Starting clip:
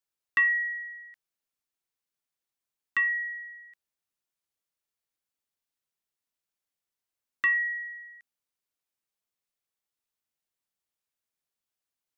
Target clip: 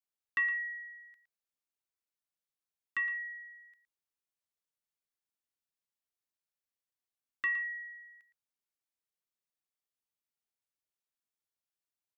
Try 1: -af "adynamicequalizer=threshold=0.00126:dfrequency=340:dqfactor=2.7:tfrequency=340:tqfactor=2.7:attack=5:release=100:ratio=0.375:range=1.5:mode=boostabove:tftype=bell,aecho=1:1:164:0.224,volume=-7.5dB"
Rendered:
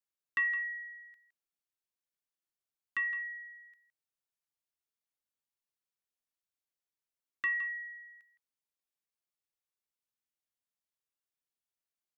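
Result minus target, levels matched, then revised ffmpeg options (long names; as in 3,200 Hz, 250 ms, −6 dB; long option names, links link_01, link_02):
echo 50 ms late
-af "adynamicequalizer=threshold=0.00126:dfrequency=340:dqfactor=2.7:tfrequency=340:tqfactor=2.7:attack=5:release=100:ratio=0.375:range=1.5:mode=boostabove:tftype=bell,aecho=1:1:114:0.224,volume=-7.5dB"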